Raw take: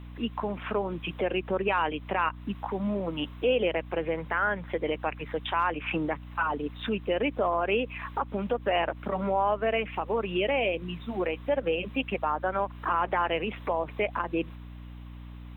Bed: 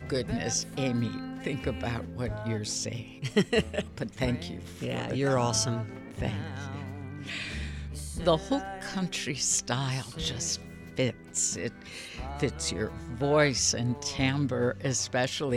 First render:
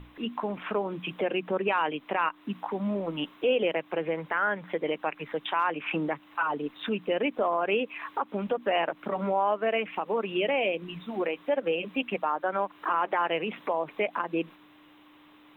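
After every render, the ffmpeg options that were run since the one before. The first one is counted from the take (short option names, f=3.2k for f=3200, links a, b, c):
-af "bandreject=f=60:t=h:w=6,bandreject=f=120:t=h:w=6,bandreject=f=180:t=h:w=6,bandreject=f=240:t=h:w=6"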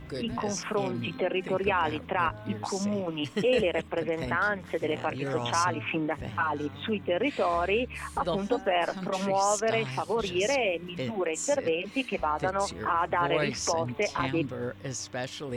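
-filter_complex "[1:a]volume=-6.5dB[a];[0:a][a]amix=inputs=2:normalize=0"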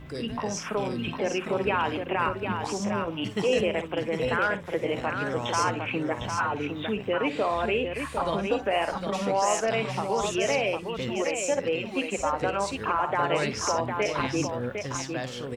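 -af "aecho=1:1:55|62|755:0.211|0.15|0.501"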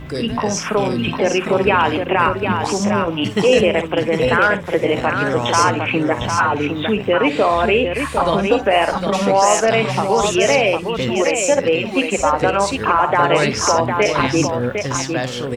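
-af "volume=11dB,alimiter=limit=-2dB:level=0:latency=1"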